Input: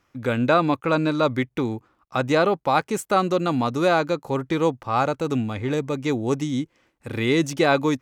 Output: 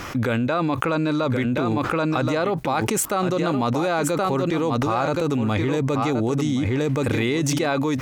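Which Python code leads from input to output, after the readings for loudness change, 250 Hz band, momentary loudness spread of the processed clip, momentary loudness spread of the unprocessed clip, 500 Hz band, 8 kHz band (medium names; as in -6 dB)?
+0.5 dB, +1.5 dB, 1 LU, 8 LU, -0.5 dB, +8.0 dB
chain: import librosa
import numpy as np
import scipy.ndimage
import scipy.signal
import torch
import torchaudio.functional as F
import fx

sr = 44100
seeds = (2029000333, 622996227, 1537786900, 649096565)

p1 = x + fx.echo_single(x, sr, ms=1074, db=-10.0, dry=0)
p2 = fx.env_flatten(p1, sr, amount_pct=100)
y = p2 * librosa.db_to_amplitude(-6.0)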